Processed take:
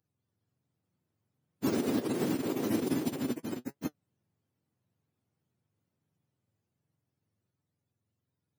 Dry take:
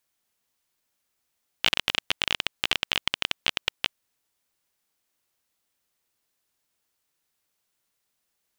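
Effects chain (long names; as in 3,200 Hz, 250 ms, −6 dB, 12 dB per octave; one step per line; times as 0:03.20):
frequency axis turned over on the octave scale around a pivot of 880 Hz
spectral tilt +3.5 dB per octave
0:03.43–0:03.85: downward compressor 3 to 1, threshold −34 dBFS, peak gain reduction 8.5 dB
flanger 1.3 Hz, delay 6.2 ms, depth 3.1 ms, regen +56%
delay with pitch and tempo change per echo 287 ms, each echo +3 semitones, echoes 3
level +1 dB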